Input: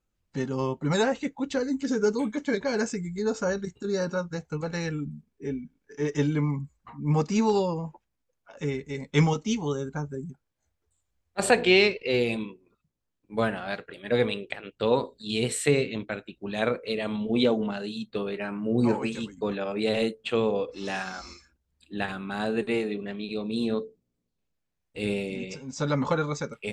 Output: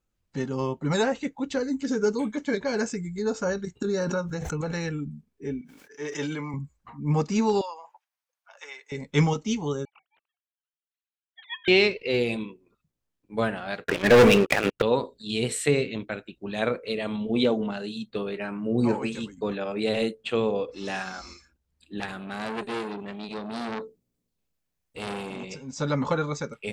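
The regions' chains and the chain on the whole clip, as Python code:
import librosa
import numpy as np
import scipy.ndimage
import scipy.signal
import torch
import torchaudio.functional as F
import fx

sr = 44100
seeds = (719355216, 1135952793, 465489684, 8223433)

y = fx.chain(x, sr, fx.notch(hz=4700.0, q=7.6),
    fx.pre_swell(db_per_s=27.0), at=(3.81, 4.94))
y = fx.chain(y, sr, fx.highpass(hz=720.0, slope=6),
    fx.sustainer(db_per_s=23.0), at=(5.61, 6.54))
y = fx.chain(y, sr, fx.highpass(hz=750.0, slope=24),
    fx.notch(hz=7200.0, q=11.0), at=(7.61, 8.92))
y = fx.chain(y, sr, fx.sine_speech(),
    fx.ellip_highpass(hz=2200.0, order=4, stop_db=80),
    fx.ring_mod(carrier_hz=740.0), at=(9.85, 11.68))
y = fx.chain(y, sr, fx.lowpass(hz=2900.0, slope=24),
    fx.leveller(passes=5), at=(13.84, 14.82))
y = fx.chain(y, sr, fx.high_shelf(hz=6800.0, db=7.5),
    fx.transformer_sat(knee_hz=2500.0), at=(22.0, 25.52))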